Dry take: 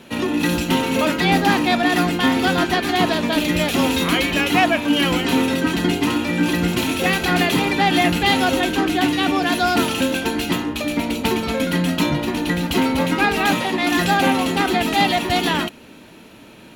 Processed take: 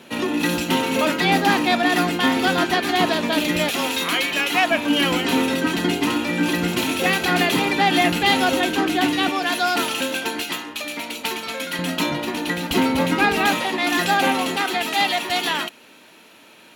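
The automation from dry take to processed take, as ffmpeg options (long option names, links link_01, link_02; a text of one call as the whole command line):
ffmpeg -i in.wav -af "asetnsamples=nb_out_samples=441:pad=0,asendcmd='3.7 highpass f 760;4.71 highpass f 220;9.29 highpass f 640;10.43 highpass f 1300;11.79 highpass f 390;12.71 highpass f 110;13.49 highpass f 390;14.56 highpass f 840',highpass=frequency=230:poles=1" out.wav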